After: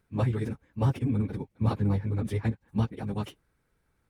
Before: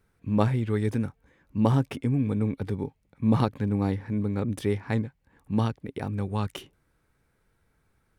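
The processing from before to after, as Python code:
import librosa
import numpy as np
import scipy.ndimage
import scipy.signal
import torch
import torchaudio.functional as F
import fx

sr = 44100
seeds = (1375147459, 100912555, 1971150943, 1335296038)

y = fx.dynamic_eq(x, sr, hz=100.0, q=3.0, threshold_db=-41.0, ratio=4.0, max_db=4)
y = fx.stretch_vocoder_free(y, sr, factor=0.5)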